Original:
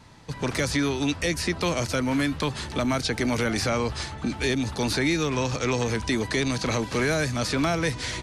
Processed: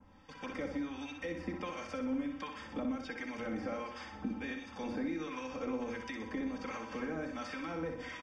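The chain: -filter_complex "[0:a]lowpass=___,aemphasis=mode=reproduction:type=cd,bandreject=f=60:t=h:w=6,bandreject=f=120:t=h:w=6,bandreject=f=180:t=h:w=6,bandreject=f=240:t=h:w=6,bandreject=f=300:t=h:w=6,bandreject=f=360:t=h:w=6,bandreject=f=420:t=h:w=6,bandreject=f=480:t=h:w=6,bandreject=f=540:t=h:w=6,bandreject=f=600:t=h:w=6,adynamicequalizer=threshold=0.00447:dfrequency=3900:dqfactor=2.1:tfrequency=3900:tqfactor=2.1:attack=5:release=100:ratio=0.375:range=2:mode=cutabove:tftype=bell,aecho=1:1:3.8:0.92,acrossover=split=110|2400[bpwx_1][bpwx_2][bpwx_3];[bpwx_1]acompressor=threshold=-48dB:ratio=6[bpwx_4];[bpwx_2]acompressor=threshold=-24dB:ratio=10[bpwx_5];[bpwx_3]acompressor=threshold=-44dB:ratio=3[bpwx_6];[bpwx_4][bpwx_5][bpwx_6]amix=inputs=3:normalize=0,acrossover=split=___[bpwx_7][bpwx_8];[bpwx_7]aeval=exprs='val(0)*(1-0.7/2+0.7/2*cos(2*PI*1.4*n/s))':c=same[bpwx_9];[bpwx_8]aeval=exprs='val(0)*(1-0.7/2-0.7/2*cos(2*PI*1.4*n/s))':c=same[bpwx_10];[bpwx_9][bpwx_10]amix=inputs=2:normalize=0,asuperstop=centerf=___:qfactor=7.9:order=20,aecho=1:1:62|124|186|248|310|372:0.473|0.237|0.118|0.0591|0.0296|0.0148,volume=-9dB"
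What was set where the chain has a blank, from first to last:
5200, 930, 4100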